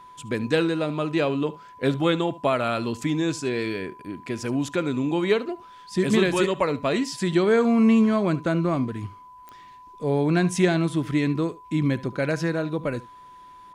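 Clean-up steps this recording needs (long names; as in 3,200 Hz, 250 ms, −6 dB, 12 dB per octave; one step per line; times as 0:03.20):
click removal
notch filter 1,000 Hz, Q 30
echo removal 72 ms −19 dB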